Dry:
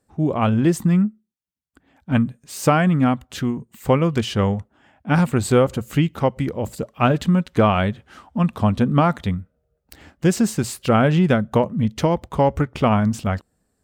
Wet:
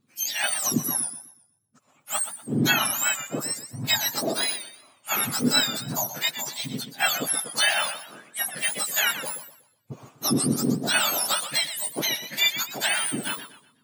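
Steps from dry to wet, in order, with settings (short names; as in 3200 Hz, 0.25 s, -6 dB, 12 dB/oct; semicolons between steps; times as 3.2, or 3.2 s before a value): spectrum mirrored in octaves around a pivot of 1400 Hz; high shelf 8700 Hz -5.5 dB; warbling echo 0.123 s, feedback 34%, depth 156 cents, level -11 dB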